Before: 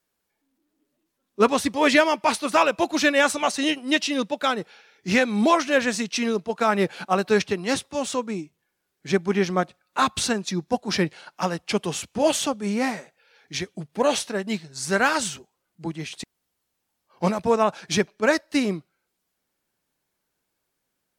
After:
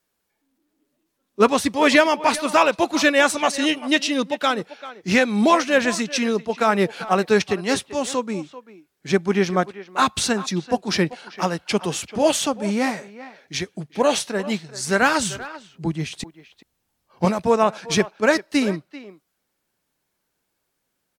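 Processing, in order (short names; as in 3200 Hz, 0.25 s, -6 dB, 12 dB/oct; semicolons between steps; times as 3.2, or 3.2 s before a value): 15.02–17.25 low shelf 160 Hz +11.5 dB; speakerphone echo 0.39 s, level -15 dB; gain +2.5 dB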